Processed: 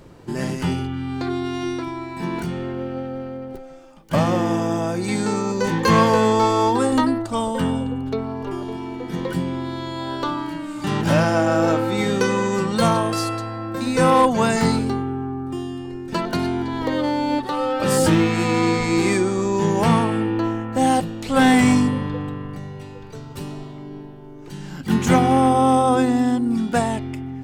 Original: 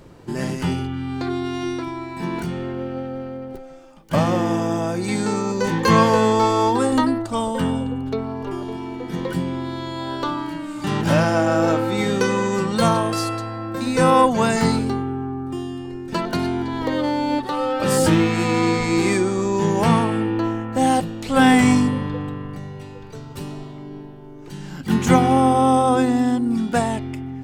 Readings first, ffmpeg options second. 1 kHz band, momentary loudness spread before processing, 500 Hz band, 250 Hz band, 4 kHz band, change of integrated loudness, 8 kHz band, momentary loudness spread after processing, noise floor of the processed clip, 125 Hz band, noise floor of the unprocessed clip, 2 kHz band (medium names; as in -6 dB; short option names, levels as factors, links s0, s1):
0.0 dB, 16 LU, 0.0 dB, 0.0 dB, 0.0 dB, 0.0 dB, 0.0 dB, 15 LU, -38 dBFS, 0.0 dB, -38 dBFS, 0.0 dB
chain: -af "asoftclip=type=hard:threshold=0.376"